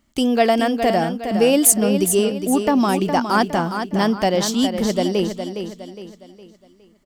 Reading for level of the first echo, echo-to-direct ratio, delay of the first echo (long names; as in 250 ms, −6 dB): −8.0 dB, −7.0 dB, 412 ms